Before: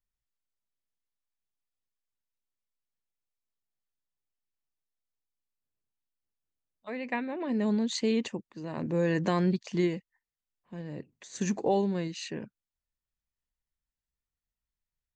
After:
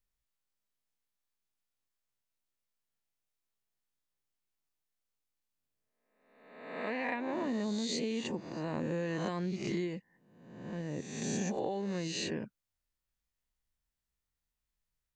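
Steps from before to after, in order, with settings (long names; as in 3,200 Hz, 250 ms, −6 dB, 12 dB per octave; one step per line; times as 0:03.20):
peak hold with a rise ahead of every peak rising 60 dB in 1.02 s
downward compressor 12 to 1, threshold −31 dBFS, peak gain reduction 12 dB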